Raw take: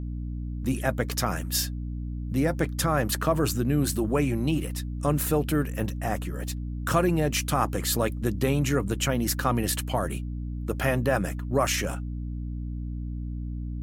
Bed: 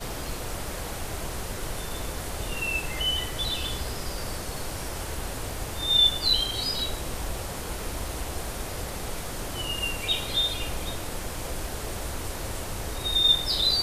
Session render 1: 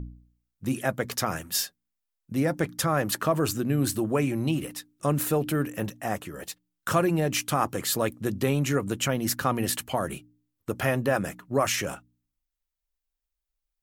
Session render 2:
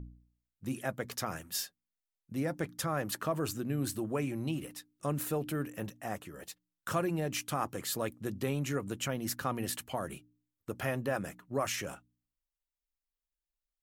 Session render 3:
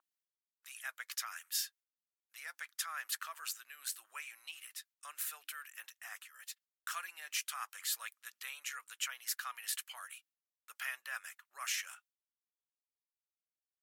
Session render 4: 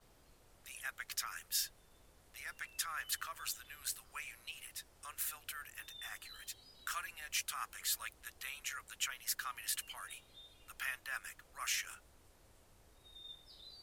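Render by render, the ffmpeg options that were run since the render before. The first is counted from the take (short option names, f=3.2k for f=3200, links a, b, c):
-af "bandreject=f=60:t=h:w=4,bandreject=f=120:t=h:w=4,bandreject=f=180:t=h:w=4,bandreject=f=240:t=h:w=4,bandreject=f=300:t=h:w=4"
-af "volume=-8.5dB"
-af "agate=range=-33dB:threshold=-57dB:ratio=3:detection=peak,highpass=f=1.4k:w=0.5412,highpass=f=1.4k:w=1.3066"
-filter_complex "[1:a]volume=-32.5dB[a];[0:a][a]amix=inputs=2:normalize=0"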